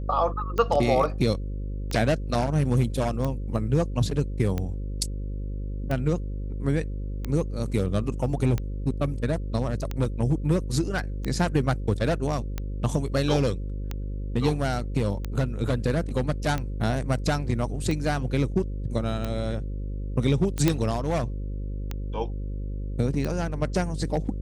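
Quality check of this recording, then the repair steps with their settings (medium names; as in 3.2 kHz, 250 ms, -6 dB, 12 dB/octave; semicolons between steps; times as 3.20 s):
buzz 50 Hz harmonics 11 -31 dBFS
tick 45 rpm -16 dBFS
20.68 s: pop -7 dBFS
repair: de-click; de-hum 50 Hz, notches 11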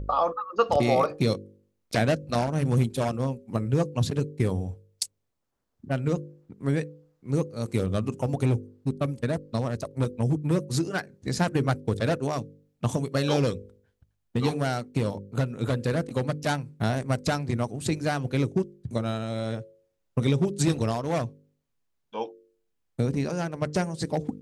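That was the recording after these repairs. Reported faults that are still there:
nothing left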